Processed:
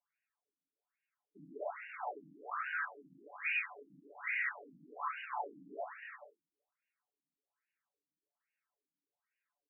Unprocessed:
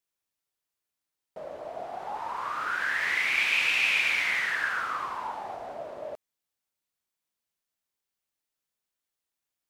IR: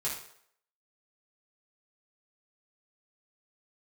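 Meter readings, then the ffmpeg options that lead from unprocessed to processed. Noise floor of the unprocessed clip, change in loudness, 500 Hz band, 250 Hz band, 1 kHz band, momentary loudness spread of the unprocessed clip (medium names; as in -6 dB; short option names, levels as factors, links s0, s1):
under -85 dBFS, -14.0 dB, -8.0 dB, -6.5 dB, -9.5 dB, 17 LU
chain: -filter_complex "[0:a]aeval=exprs='(tanh(126*val(0)+0.4)-tanh(0.4))/126':c=same,aecho=1:1:6.9:0.71,asplit=2[s0][s1];[1:a]atrim=start_sample=2205[s2];[s1][s2]afir=irnorm=-1:irlink=0,volume=0.398[s3];[s0][s3]amix=inputs=2:normalize=0,afftfilt=real='re*between(b*sr/1024,220*pow(2100/220,0.5+0.5*sin(2*PI*1.2*pts/sr))/1.41,220*pow(2100/220,0.5+0.5*sin(2*PI*1.2*pts/sr))*1.41)':imag='im*between(b*sr/1024,220*pow(2100/220,0.5+0.5*sin(2*PI*1.2*pts/sr))/1.41,220*pow(2100/220,0.5+0.5*sin(2*PI*1.2*pts/sr))*1.41)':win_size=1024:overlap=0.75,volume=1.58"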